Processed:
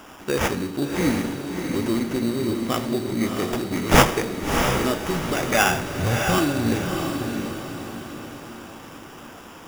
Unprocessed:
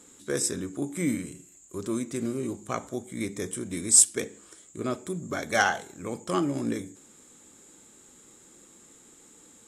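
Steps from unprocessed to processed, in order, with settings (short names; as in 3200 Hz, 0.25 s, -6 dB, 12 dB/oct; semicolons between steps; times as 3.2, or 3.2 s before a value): Schroeder reverb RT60 0.64 s, combs from 27 ms, DRR 10 dB; in parallel at +1.5 dB: compressor, threshold -36 dBFS, peak gain reduction 21.5 dB; on the sum: sample-rate reducer 4200 Hz, jitter 0%; 5.69–6.38 resonant low shelf 170 Hz +12.5 dB, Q 1.5; on a send: diffused feedback echo 0.662 s, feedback 45%, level -4.5 dB; on the sum: gain +2.5 dB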